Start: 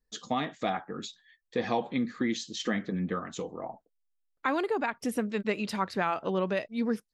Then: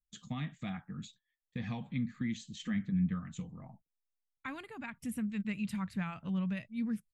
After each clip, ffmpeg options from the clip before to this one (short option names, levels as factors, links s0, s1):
-af "agate=range=0.178:threshold=0.00355:ratio=16:detection=peak,firequalizer=gain_entry='entry(160,0);entry(370,-28);entry(1100,-20);entry(2300,-12);entry(5300,-22);entry(7600,-10)':delay=0.05:min_phase=1,volume=1.78"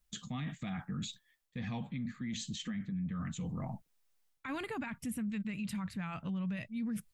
-af "areverse,acompressor=threshold=0.00562:ratio=6,areverse,alimiter=level_in=11.2:limit=0.0631:level=0:latency=1:release=32,volume=0.0891,volume=4.73"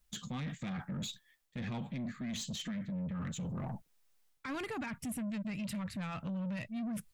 -af "asoftclip=type=tanh:threshold=0.0126,volume=1.5"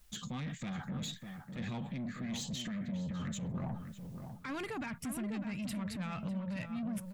-filter_complex "[0:a]alimiter=level_in=12.6:limit=0.0631:level=0:latency=1:release=169,volume=0.0794,asplit=2[s0][s1];[s1]adelay=601,lowpass=f=1600:p=1,volume=0.447,asplit=2[s2][s3];[s3]adelay=601,lowpass=f=1600:p=1,volume=0.25,asplit=2[s4][s5];[s5]adelay=601,lowpass=f=1600:p=1,volume=0.25[s6];[s0][s2][s4][s6]amix=inputs=4:normalize=0,volume=3.35"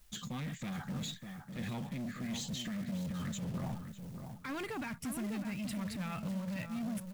-af "acrusher=bits=4:mode=log:mix=0:aa=0.000001"